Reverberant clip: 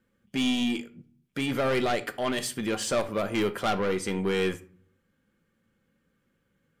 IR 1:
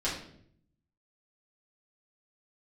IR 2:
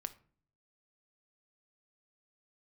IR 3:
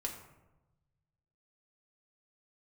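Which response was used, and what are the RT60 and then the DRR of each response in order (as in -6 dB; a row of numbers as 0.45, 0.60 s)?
2; 0.65, 0.45, 1.0 s; -9.0, 9.5, 0.0 dB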